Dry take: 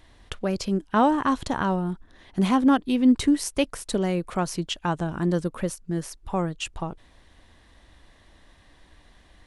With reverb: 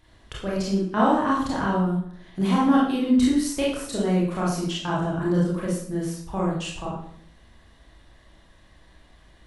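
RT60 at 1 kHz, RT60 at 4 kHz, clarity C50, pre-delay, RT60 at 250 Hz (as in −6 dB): 0.60 s, 0.50 s, 1.5 dB, 24 ms, 0.75 s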